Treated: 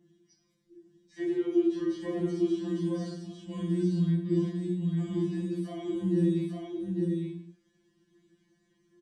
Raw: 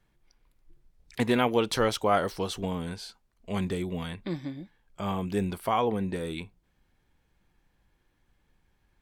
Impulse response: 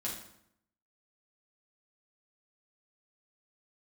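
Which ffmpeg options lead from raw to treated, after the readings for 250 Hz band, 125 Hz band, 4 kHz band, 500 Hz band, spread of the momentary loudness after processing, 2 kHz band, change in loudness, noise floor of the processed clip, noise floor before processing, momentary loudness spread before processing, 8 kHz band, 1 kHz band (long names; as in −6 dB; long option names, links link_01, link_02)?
+4.0 dB, +4.0 dB, −13.0 dB, −2.5 dB, 10 LU, −14.5 dB, −1.0 dB, −72 dBFS, −72 dBFS, 16 LU, below −10 dB, −20.0 dB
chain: -filter_complex "[0:a]bandreject=frequency=860:width=21,acrossover=split=2600[link_01][link_02];[link_02]acompressor=threshold=-49dB:ratio=4:attack=1:release=60[link_03];[link_01][link_03]amix=inputs=2:normalize=0,bass=frequency=250:gain=2,treble=frequency=4000:gain=5,acrossover=split=2300[link_04][link_05];[link_05]alimiter=level_in=17.5dB:limit=-24dB:level=0:latency=1,volume=-17.5dB[link_06];[link_04][link_06]amix=inputs=2:normalize=0,acrossover=split=360|3000[link_07][link_08][link_09];[link_08]acompressor=threshold=-47dB:ratio=3[link_10];[link_07][link_10][link_09]amix=inputs=3:normalize=0,aphaser=in_gain=1:out_gain=1:delay=3.8:decay=0.5:speed=0.49:type=triangular,aeval=exprs='val(0)+0.00501*(sin(2*PI*50*n/s)+sin(2*PI*2*50*n/s)/2+sin(2*PI*3*50*n/s)/3+sin(2*PI*4*50*n/s)/4+sin(2*PI*5*50*n/s)/5)':channel_layout=same,asplit=2[link_11][link_12];[link_12]asoftclip=type=hard:threshold=-33dB,volume=-11.5dB[link_13];[link_11][link_13]amix=inputs=2:normalize=0,highpass=140,equalizer=frequency=320:width_type=q:width=4:gain=10,equalizer=frequency=500:width_type=q:width=4:gain=-9,equalizer=frequency=940:width_type=q:width=4:gain=-8,equalizer=frequency=1300:width_type=q:width=4:gain=-9,equalizer=frequency=2500:width_type=q:width=4:gain=-8,equalizer=frequency=4000:width_type=q:width=4:gain=-4,lowpass=frequency=7800:width=0.5412,lowpass=frequency=7800:width=1.3066,aecho=1:1:851:0.708[link_14];[1:a]atrim=start_sample=2205,afade=type=out:start_time=0.3:duration=0.01,atrim=end_sample=13671[link_15];[link_14][link_15]afir=irnorm=-1:irlink=0,afftfilt=real='re*2.83*eq(mod(b,8),0)':imag='im*2.83*eq(mod(b,8),0)':win_size=2048:overlap=0.75,volume=-1.5dB"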